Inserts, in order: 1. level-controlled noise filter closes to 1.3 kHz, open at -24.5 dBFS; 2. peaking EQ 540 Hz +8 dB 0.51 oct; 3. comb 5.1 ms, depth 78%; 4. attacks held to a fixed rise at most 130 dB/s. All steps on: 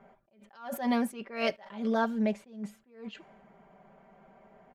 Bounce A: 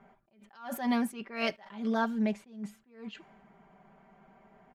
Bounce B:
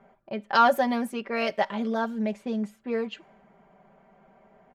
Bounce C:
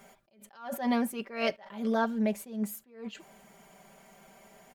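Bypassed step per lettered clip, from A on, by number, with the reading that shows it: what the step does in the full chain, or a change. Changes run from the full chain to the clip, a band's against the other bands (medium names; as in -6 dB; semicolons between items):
2, 500 Hz band -3.5 dB; 4, 1 kHz band +5.0 dB; 1, momentary loudness spread change -2 LU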